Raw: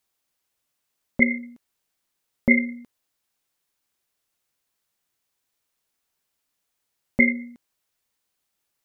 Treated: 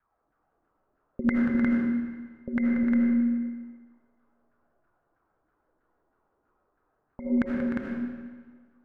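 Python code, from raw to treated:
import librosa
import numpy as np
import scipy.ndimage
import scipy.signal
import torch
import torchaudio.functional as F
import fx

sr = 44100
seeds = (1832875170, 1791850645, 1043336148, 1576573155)

y = fx.low_shelf(x, sr, hz=83.0, db=11.5)
y = fx.over_compress(y, sr, threshold_db=-27.0, ratio=-1.0)
y = fx.high_shelf(y, sr, hz=2100.0, db=-10.5)
y = fx.filter_lfo_lowpass(y, sr, shape='saw_down', hz=3.1, low_hz=260.0, high_hz=1600.0, q=7.3)
y = fx.vibrato(y, sr, rate_hz=1.4, depth_cents=24.0)
y = fx.echo_multitap(y, sr, ms=(184, 304, 355), db=(-9.5, -8.0, -3.0))
y = fx.rev_freeverb(y, sr, rt60_s=1.5, hf_ratio=0.9, predelay_ms=40, drr_db=-0.5)
y = F.gain(torch.from_numpy(y), -3.0).numpy()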